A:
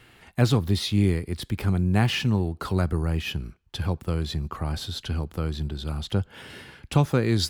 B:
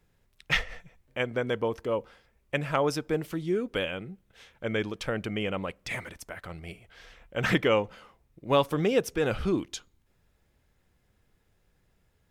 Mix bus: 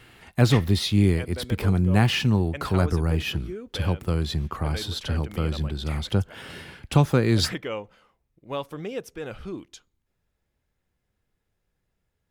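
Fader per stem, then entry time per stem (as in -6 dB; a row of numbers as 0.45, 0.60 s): +2.0, -8.0 dB; 0.00, 0.00 s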